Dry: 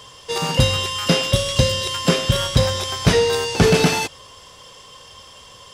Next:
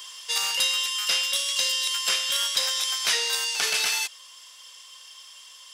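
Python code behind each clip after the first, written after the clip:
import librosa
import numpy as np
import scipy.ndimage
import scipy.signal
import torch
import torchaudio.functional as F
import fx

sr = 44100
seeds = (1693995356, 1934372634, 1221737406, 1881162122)

y = scipy.signal.sosfilt(scipy.signal.bessel(2, 2200.0, 'highpass', norm='mag', fs=sr, output='sos'), x)
y = fx.high_shelf(y, sr, hz=11000.0, db=6.5)
y = fx.rider(y, sr, range_db=4, speed_s=0.5)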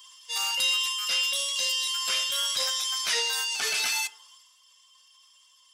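y = fx.bin_expand(x, sr, power=1.5)
y = fx.transient(y, sr, attack_db=-5, sustain_db=7)
y = fx.rev_fdn(y, sr, rt60_s=0.6, lf_ratio=1.05, hf_ratio=0.3, size_ms=23.0, drr_db=11.0)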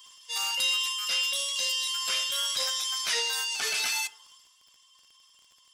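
y = fx.dmg_crackle(x, sr, seeds[0], per_s=21.0, level_db=-44.0)
y = y * librosa.db_to_amplitude(-1.5)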